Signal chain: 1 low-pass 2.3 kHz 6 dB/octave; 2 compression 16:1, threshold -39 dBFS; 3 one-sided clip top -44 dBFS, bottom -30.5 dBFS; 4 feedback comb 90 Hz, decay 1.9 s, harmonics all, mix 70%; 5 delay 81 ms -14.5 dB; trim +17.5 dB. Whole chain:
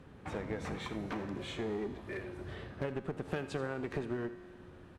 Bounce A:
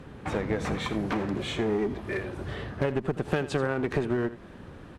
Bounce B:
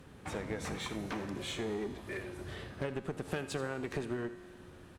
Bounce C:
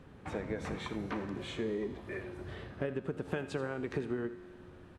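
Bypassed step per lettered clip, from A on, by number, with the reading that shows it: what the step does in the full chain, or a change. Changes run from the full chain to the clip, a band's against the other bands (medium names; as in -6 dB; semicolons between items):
4, loudness change +9.5 LU; 1, 8 kHz band +9.0 dB; 3, distortion -13 dB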